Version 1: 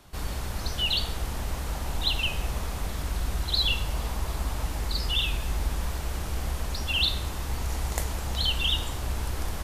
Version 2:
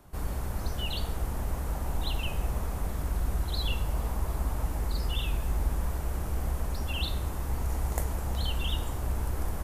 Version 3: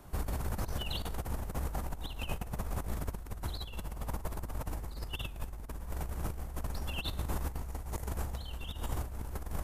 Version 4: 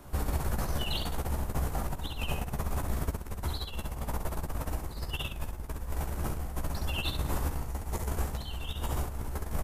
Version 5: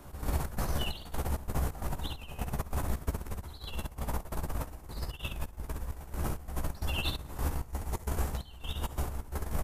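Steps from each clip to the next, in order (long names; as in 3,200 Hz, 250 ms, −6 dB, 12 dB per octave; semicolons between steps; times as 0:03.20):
parametric band 3,900 Hz −12 dB 2.1 octaves
compressor whose output falls as the input rises −33 dBFS, ratio −0.5; level −2.5 dB
ambience of single reflections 14 ms −6 dB, 67 ms −5 dB; level +3 dB
gate pattern "x.xx.xxx..x" 132 BPM −12 dB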